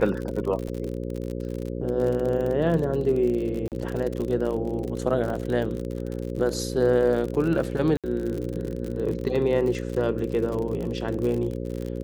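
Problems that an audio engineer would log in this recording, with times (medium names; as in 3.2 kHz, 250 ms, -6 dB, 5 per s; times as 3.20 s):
buzz 60 Hz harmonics 9 -31 dBFS
crackle 49 per s -29 dBFS
0.68 s: dropout 3.3 ms
3.68–3.72 s: dropout 38 ms
7.97–8.04 s: dropout 67 ms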